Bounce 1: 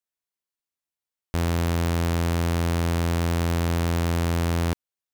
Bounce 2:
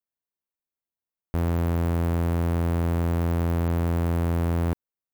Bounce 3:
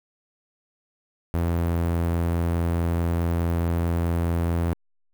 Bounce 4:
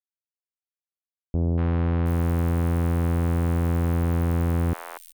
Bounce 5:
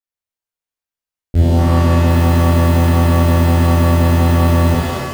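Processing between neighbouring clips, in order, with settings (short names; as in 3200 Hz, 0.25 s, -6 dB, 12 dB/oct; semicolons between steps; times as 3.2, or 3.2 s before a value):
bell 5000 Hz -14.5 dB 2.6 oct
level-crossing sampler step -54 dBFS
three bands offset in time lows, mids, highs 0.24/0.72 s, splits 670/3900 Hz; gain +1.5 dB
switching dead time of 0.19 ms; shimmer reverb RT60 1.1 s, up +7 st, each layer -2 dB, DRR -6.5 dB; gain +4 dB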